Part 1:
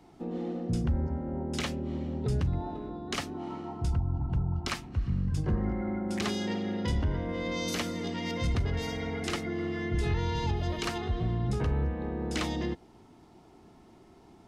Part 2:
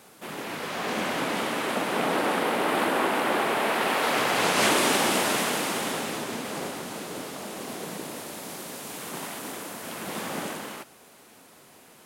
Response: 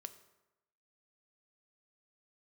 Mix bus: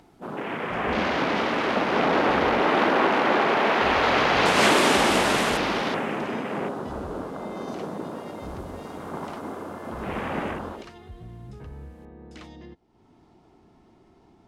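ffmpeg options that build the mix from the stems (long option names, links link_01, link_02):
-filter_complex "[0:a]acompressor=mode=upward:threshold=-33dB:ratio=2.5,volume=-12dB[link_01];[1:a]afwtdn=0.0141,volume=1.5dB,asplit=2[link_02][link_03];[link_03]volume=-3dB[link_04];[2:a]atrim=start_sample=2205[link_05];[link_04][link_05]afir=irnorm=-1:irlink=0[link_06];[link_01][link_02][link_06]amix=inputs=3:normalize=0,highshelf=frequency=7400:gain=-11"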